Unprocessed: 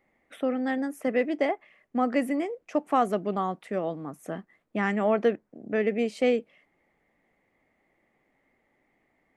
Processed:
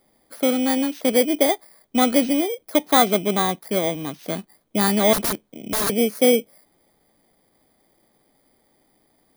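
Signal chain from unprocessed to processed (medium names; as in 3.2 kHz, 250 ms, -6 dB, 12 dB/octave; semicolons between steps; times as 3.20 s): bit-reversed sample order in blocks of 16 samples; 5.13–5.90 s: integer overflow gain 24.5 dB; trim +7.5 dB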